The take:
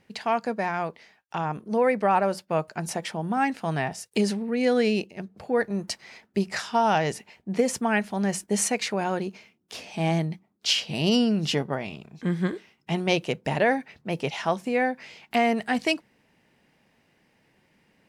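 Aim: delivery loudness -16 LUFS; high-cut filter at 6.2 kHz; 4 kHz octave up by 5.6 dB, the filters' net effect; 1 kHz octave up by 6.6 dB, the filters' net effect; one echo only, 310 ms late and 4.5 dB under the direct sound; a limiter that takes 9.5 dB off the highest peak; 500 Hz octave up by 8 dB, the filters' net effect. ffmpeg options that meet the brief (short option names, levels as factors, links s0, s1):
-af "lowpass=6200,equalizer=f=500:t=o:g=8,equalizer=f=1000:t=o:g=5,equalizer=f=4000:t=o:g=8,alimiter=limit=0.224:level=0:latency=1,aecho=1:1:310:0.596,volume=2.37"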